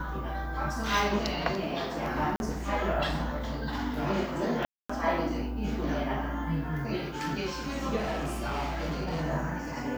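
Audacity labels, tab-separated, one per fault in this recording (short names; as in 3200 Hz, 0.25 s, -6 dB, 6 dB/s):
2.360000	2.400000	gap 41 ms
4.650000	4.890000	gap 0.245 s
7.960000	9.250000	clipped -28 dBFS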